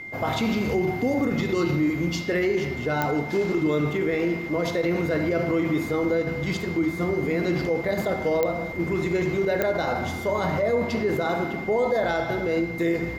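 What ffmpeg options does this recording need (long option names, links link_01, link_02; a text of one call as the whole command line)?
ffmpeg -i in.wav -af "adeclick=threshold=4,bandreject=frequency=2100:width=30" out.wav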